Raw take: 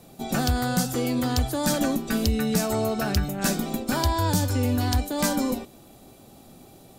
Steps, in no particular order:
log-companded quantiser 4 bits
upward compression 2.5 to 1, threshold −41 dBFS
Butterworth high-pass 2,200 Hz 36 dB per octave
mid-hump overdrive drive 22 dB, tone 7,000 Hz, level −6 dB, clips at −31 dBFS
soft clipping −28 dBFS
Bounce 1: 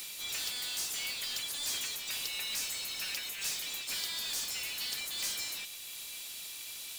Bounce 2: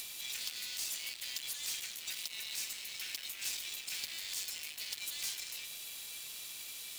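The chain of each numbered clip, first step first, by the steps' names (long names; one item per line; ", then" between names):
upward compression, then Butterworth high-pass, then mid-hump overdrive, then log-companded quantiser, then soft clipping
soft clipping, then mid-hump overdrive, then Butterworth high-pass, then log-companded quantiser, then upward compression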